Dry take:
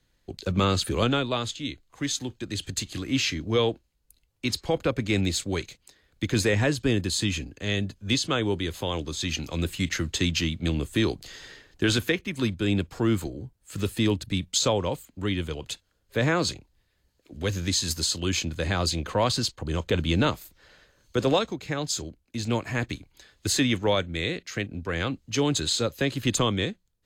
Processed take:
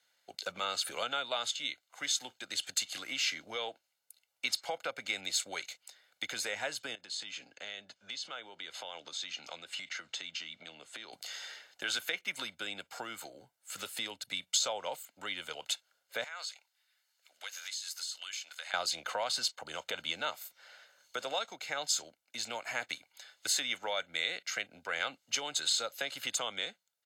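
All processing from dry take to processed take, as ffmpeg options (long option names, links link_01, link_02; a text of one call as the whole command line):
ffmpeg -i in.wav -filter_complex "[0:a]asettb=1/sr,asplit=3[link_01][link_02][link_03];[link_01]atrim=end=6.954[link_04];[link_02]atrim=start=6.95:end=11.13,asetpts=PTS-STARTPTS,afade=type=in:duration=0.004:curve=qsin,afade=type=out:start_time=4.176:duration=0.004:curve=qsin,highpass=100,lowpass=5700,acompressor=threshold=-35dB:ratio=12:attack=3.2:release=140:knee=1:detection=peak[link_05];[link_03]atrim=start=11.126[link_06];[link_04][link_05]acrossfade=duration=0.004:curve1=hsin:curve2=qsin[link_07];[link_07][link_06]acrossfade=duration=0.004:curve1=qsin:curve2=hsin,asettb=1/sr,asplit=3[link_08][link_09][link_10];[link_08]atrim=end=16.244[link_11];[link_09]atrim=start=16.24:end=18.74,asetpts=PTS-STARTPTS,afade=type=in:duration=0.004:curve=qsin,afade=type=out:start_time=2.496:duration=0.004:curve=qsin,highpass=1100,acompressor=threshold=-40dB:ratio=4:attack=3.2:release=140:knee=1:detection=peak[link_12];[link_10]atrim=start=18.736[link_13];[link_11][link_12]acrossfade=duration=0.004:curve1=hsin:curve2=qsin[link_14];[link_14][link_13]acrossfade=duration=0.004:curve1=qsin:curve2=hsin,acompressor=threshold=-27dB:ratio=6,highpass=740,aecho=1:1:1.4:0.51" out.wav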